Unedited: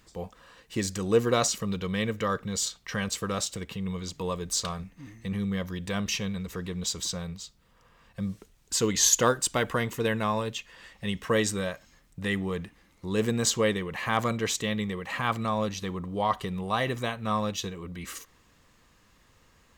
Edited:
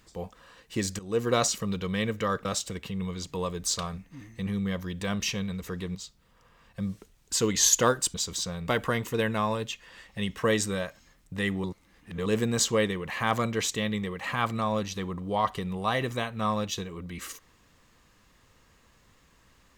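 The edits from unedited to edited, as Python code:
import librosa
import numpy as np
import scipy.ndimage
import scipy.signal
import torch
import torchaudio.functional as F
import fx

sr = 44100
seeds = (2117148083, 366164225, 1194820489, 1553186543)

y = fx.edit(x, sr, fx.fade_in_from(start_s=0.99, length_s=0.36, floor_db=-17.0),
    fx.cut(start_s=2.45, length_s=0.86),
    fx.move(start_s=6.81, length_s=0.54, to_s=9.54),
    fx.reverse_span(start_s=12.5, length_s=0.62), tone=tone)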